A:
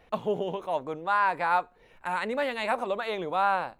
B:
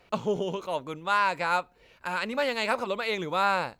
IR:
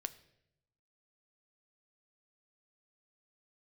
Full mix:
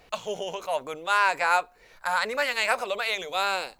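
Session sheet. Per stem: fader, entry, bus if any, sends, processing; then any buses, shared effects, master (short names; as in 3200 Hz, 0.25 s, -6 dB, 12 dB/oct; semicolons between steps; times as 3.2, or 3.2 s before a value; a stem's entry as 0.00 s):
+1.0 dB, 0.00 s, no send, dry
-0.5 dB, 0.00 s, polarity flipped, no send, tone controls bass -6 dB, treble +9 dB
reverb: off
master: dry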